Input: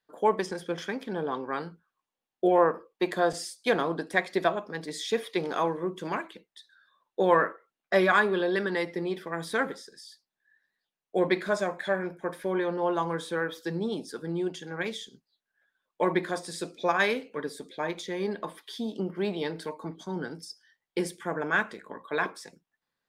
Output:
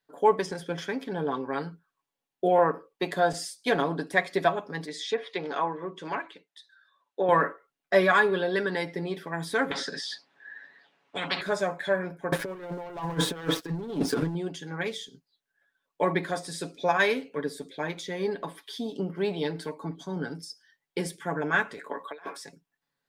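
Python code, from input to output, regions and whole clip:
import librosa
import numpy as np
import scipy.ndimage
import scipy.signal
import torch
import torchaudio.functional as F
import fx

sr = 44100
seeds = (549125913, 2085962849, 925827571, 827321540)

y = fx.chain(x, sr, fx.highpass(hz=420.0, slope=6),
    fx.env_lowpass_down(base_hz=1800.0, full_db=-24.0),
    fx.high_shelf(hz=9900.0, db=-9.5), at=(4.86, 7.29))
y = fx.chain(y, sr, fx.bandpass_edges(low_hz=250.0, high_hz=2600.0),
    fx.spectral_comp(ratio=10.0), at=(9.71, 11.41))
y = fx.chain(y, sr, fx.high_shelf(hz=2400.0, db=-10.0),
    fx.leveller(passes=3),
    fx.over_compress(threshold_db=-29.0, ratio=-0.5), at=(12.32, 14.35))
y = fx.chain(y, sr, fx.highpass(hz=370.0, slope=12),
    fx.over_compress(threshold_db=-37.0, ratio=-0.5), at=(21.77, 22.37))
y = fx.peak_eq(y, sr, hz=180.0, db=2.5, octaves=0.77)
y = fx.notch(y, sr, hz=1200.0, q=17.0)
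y = y + 0.52 * np.pad(y, (int(7.1 * sr / 1000.0), 0))[:len(y)]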